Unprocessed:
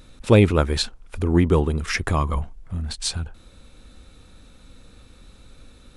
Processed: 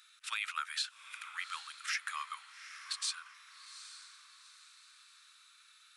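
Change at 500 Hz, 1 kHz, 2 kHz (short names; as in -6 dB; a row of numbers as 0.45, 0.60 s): under -40 dB, -13.0 dB, -8.5 dB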